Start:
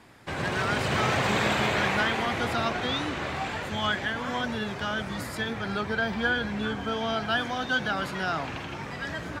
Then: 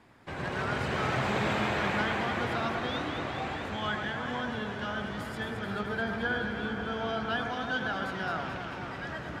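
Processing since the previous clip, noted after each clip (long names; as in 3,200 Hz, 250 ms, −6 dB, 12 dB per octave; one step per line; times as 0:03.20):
high-shelf EQ 3,900 Hz −8 dB
delay that swaps between a low-pass and a high-pass 109 ms, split 1,800 Hz, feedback 85%, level −5.5 dB
level −5 dB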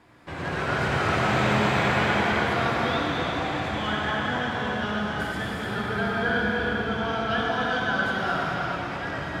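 reverb whose tail is shaped and stops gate 430 ms flat, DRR −3 dB
level +2 dB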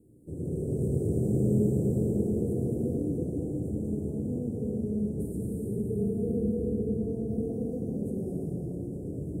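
Chebyshev band-stop filter 450–8,500 Hz, order 4
level +1 dB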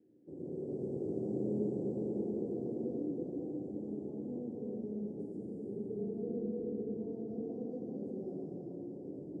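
loudspeaker in its box 400–4,000 Hz, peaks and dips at 450 Hz −7 dB, 640 Hz −7 dB, 1,100 Hz −5 dB, 1,700 Hz +9 dB, 3,600 Hz −7 dB
level +1.5 dB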